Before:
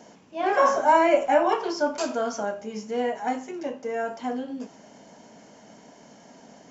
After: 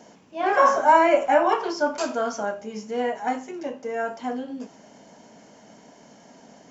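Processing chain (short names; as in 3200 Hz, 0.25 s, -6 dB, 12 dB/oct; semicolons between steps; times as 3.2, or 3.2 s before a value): dynamic EQ 1300 Hz, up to +4 dB, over -33 dBFS, Q 1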